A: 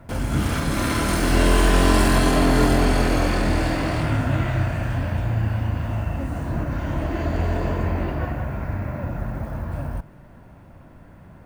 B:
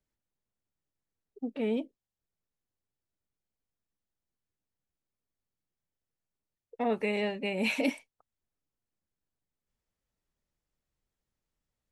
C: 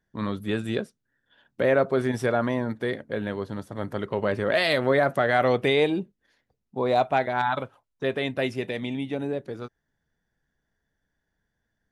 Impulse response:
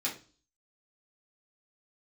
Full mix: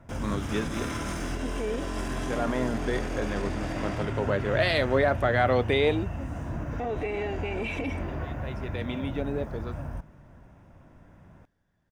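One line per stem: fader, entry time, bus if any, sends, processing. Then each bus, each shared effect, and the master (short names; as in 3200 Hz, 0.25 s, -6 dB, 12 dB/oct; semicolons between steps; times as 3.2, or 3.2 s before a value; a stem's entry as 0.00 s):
-7.0 dB, 0.00 s, bus A, no send, echo send -23 dB, compressor, threshold -19 dBFS, peak gain reduction 8 dB; bell 6200 Hz +6 dB 0.59 oct
+3.0 dB, 0.00 s, bus A, no send, no echo send, high shelf 6100 Hz -11 dB; comb 2.6 ms, depth 61%
-2.0 dB, 0.05 s, no bus, no send, no echo send, HPF 150 Hz; auto duck -21 dB, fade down 0.80 s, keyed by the second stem
bus A: 0.0 dB, Butterworth band-stop 4300 Hz, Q 7.7; limiter -22.5 dBFS, peak gain reduction 9 dB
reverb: off
echo: echo 0.472 s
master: high shelf 9700 Hz -9.5 dB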